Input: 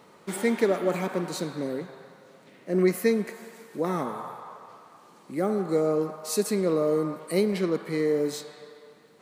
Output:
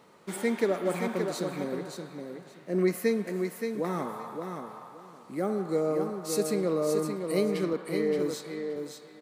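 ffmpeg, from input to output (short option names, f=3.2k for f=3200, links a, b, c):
-filter_complex "[0:a]asettb=1/sr,asplit=3[a][b][c];[a]atrim=end=7.734[d];[b]atrim=start=7.73:end=8.19,asetpts=PTS-STARTPTS,afade=t=in:d=0.004:c=qsin,afade=t=out:st=0.456:d=0.004:c=qsin,highpass=170,lowpass=4.6k[e];[c]atrim=start=8.186[f];[d][e]acrossfade=d=0.004:c1=hsin:c2=qsin[g];[g][f]acrossfade=d=0.004:c1=qsin:c2=hsin,asplit=2[h][i];[i]aecho=0:1:573|1146|1719:0.501|0.0902|0.0162[j];[h][j]amix=inputs=2:normalize=0,volume=-3.5dB"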